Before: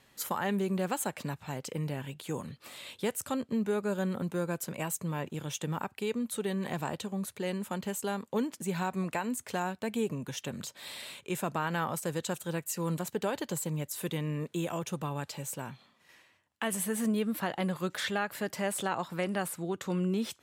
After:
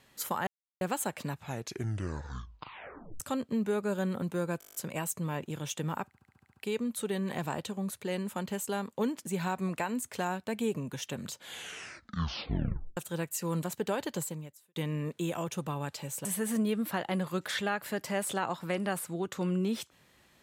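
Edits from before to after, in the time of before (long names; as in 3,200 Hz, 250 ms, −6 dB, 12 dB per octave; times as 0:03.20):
0:00.47–0:00.81: silence
0:01.38: tape stop 1.82 s
0:04.59: stutter 0.02 s, 9 plays
0:05.91: stutter 0.07 s, 8 plays
0:10.67: tape stop 1.65 s
0:13.55–0:14.11: fade out quadratic
0:15.60–0:16.74: remove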